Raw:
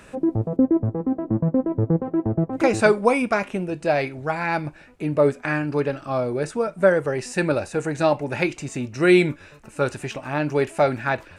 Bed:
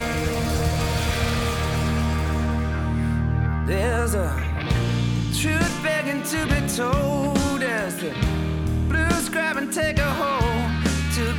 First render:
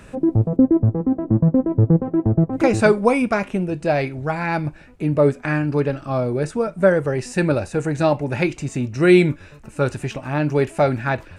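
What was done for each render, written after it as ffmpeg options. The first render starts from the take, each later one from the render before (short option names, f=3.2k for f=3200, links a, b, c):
-af "lowshelf=f=220:g=9.5"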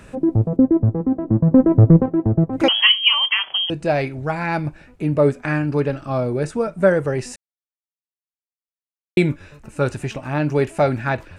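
-filter_complex "[0:a]asettb=1/sr,asplit=3[a][b][c];[a]atrim=end=1.514[d];[b]atrim=start=1.51:end=2.06,asetpts=PTS-STARTPTS,afade=t=in:d=0.004:c=qsin,afade=t=out:st=0.546:d=0.004:c=qsin,acontrast=80[e];[c]atrim=start=2.056[f];[d][e]acrossfade=d=0.004:c1=hsin:c2=qsin[g];[g][f]acrossfade=d=0.004:c1=qsin:c2=hsin,asettb=1/sr,asplit=3[h][i][j];[h]atrim=end=2.684[k];[i]atrim=start=2.68:end=3.7,asetpts=PTS-STARTPTS,afade=t=in:d=0.004:c=qsin,afade=t=out:st=1.016:d=0.004:c=qsin,lowpass=f=2.9k:t=q:w=0.5098,lowpass=f=2.9k:t=q:w=0.6013,lowpass=f=2.9k:t=q:w=0.9,lowpass=f=2.9k:t=q:w=2.563,afreqshift=-3400[l];[j]atrim=start=3.696[m];[k][l]acrossfade=d=0.004:c1=hsin:c2=qsin[n];[n][m]acrossfade=d=0.004:c1=qsin:c2=hsin,asplit=3[o][p][q];[o]atrim=end=7.36,asetpts=PTS-STARTPTS,afade=t=out:st=7.356:d=0.004:c=hsin[r];[p]atrim=start=7.36:end=9.17,asetpts=PTS-STARTPTS,volume=0[s];[q]atrim=start=9.17,asetpts=PTS-STARTPTS,afade=t=in:d=0.004:c=hsin[t];[r][s][t]concat=n=3:v=0:a=1"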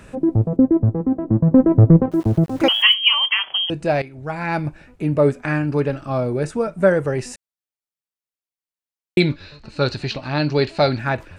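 -filter_complex "[0:a]asettb=1/sr,asplit=3[a][b][c];[a]atrim=end=2.114[d];[b]atrim=start=2.11:end=2.94,asetpts=PTS-STARTPTS,afade=t=in:d=0.004:c=qsin,afade=t=out:st=0.826:d=0.004:c=qsin,aeval=exprs='val(0)*gte(abs(val(0)),0.0158)':c=same[e];[c]atrim=start=2.936[f];[d][e]acrossfade=d=0.004:c1=hsin:c2=qsin[g];[g][f]acrossfade=d=0.004:c1=qsin:c2=hsin,asettb=1/sr,asplit=3[h][i][j];[h]atrim=end=9.204[k];[i]atrim=start=9.2:end=10.99,asetpts=PTS-STARTPTS,afade=t=in:d=0.004:c=qsin,afade=t=out:st=1.786:d=0.004:c=qsin,lowpass=f=4.3k:t=q:w=14[l];[j]atrim=start=10.986[m];[k][l]acrossfade=d=0.004:c1=hsin:c2=qsin[n];[n][m]acrossfade=d=0.004:c1=qsin:c2=hsin,asplit=2[o][p];[o]atrim=end=4.02,asetpts=PTS-STARTPTS,afade=t=out:st=4.016:d=0.004:c=hsin:silence=0.188365[q];[p]atrim=start=4.02,asetpts=PTS-STARTPTS,afade=t=in:d=0.51:silence=0.188365[r];[q][r]concat=n=2:v=0:a=1"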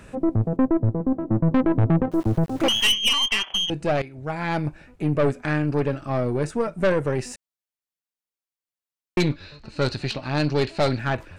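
-af "aeval=exprs='(tanh(5.62*val(0)+0.5)-tanh(0.5))/5.62':c=same"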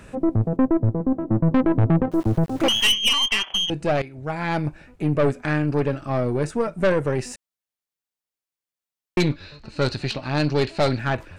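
-af "volume=1dB"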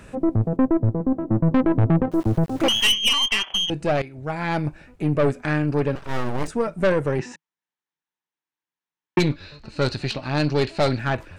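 -filter_complex "[0:a]asettb=1/sr,asplit=3[a][b][c];[a]atrim=end=5.954[d];[b]atrim=start=5.95:end=6.48,asetpts=PTS-STARTPTS,afade=t=in:d=0.004:c=qsin,afade=t=out:st=0.526:d=0.004:c=qsin,aeval=exprs='abs(val(0))':c=same[e];[c]atrim=start=6.476[f];[d][e]acrossfade=d=0.004:c1=hsin:c2=qsin[g];[g][f]acrossfade=d=0.004:c1=qsin:c2=hsin,asettb=1/sr,asplit=3[h][i][j];[h]atrim=end=7.194[k];[i]atrim=start=7.19:end=9.19,asetpts=PTS-STARTPTS,afade=t=in:d=0.004:c=qsin,afade=t=out:st=1.996:d=0.004:c=qsin,highpass=120,equalizer=f=160:t=q:w=4:g=7,equalizer=f=310:t=q:w=4:g=6,equalizer=f=600:t=q:w=4:g=-7,equalizer=f=920:t=q:w=4:g=9,equalizer=f=1.7k:t=q:w=4:g=6,equalizer=f=4.7k:t=q:w=4:g=-9,lowpass=f=5.9k:w=0.5412,lowpass=f=5.9k:w=1.3066[l];[j]atrim=start=9.186[m];[k][l]acrossfade=d=0.004:c1=hsin:c2=qsin[n];[n][m]acrossfade=d=0.004:c1=qsin:c2=hsin"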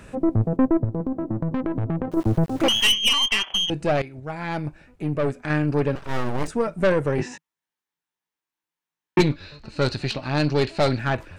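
-filter_complex "[0:a]asettb=1/sr,asplit=3[a][b][c];[a]atrim=end=0.844[d];[b]atrim=start=0.84:end=2.17,asetpts=PTS-STARTPTS,afade=t=in:d=0.004:c=qsin,afade=t=out:st=1.326:d=0.004:c=qsin,acompressor=threshold=-21dB:ratio=6:attack=3.2:release=140:knee=1:detection=peak[e];[c]atrim=start=2.166[f];[d][e]acrossfade=d=0.004:c1=hsin:c2=qsin[g];[g][f]acrossfade=d=0.004:c1=qsin:c2=hsin,asettb=1/sr,asplit=3[h][i][j];[h]atrim=end=7.164[k];[i]atrim=start=7.16:end=9.22,asetpts=PTS-STARTPTS,afade=t=in:d=0.004:c=qsin,afade=t=out:st=2.056:d=0.004:c=qsin,asplit=2[l][m];[m]adelay=19,volume=-2dB[n];[l][n]amix=inputs=2:normalize=0,atrim=end_sample=90846[o];[j]atrim=start=9.216[p];[k][o]acrossfade=d=0.004:c1=hsin:c2=qsin[q];[q][p]acrossfade=d=0.004:c1=qsin:c2=hsin,asplit=3[r][s][t];[r]atrim=end=4.202[u];[s]atrim=start=4.198:end=5.502,asetpts=PTS-STARTPTS,volume=-4dB[v];[t]atrim=start=5.498[w];[u][v]acrossfade=d=0.004:c1=hsin:c2=hsin[x];[x][w]acrossfade=d=0.004:c1=hsin:c2=hsin"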